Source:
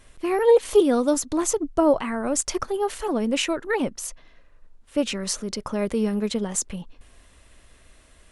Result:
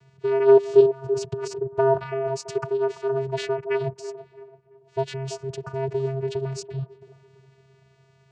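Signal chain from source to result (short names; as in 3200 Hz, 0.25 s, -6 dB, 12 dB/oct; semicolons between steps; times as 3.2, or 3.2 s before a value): 0.85–1.72 negative-ratio compressor -27 dBFS, ratio -0.5; vocoder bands 8, square 134 Hz; band-limited delay 0.334 s, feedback 35%, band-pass 510 Hz, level -10 dB; gain +1 dB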